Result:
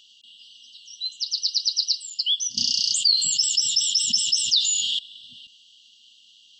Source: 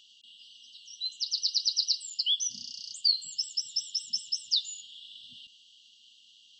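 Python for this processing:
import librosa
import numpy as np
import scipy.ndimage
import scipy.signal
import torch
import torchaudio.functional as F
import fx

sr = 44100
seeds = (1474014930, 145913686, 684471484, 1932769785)

y = fx.env_flatten(x, sr, amount_pct=70, at=(2.57, 4.99))
y = F.gain(torch.from_numpy(y), 4.5).numpy()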